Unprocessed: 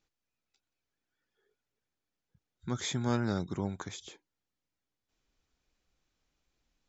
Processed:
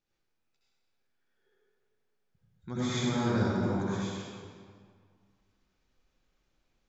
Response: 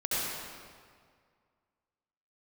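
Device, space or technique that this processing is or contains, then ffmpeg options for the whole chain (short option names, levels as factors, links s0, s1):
swimming-pool hall: -filter_complex "[1:a]atrim=start_sample=2205[s0];[0:a][s0]afir=irnorm=-1:irlink=0,highshelf=f=5100:g=-6,volume=0.631"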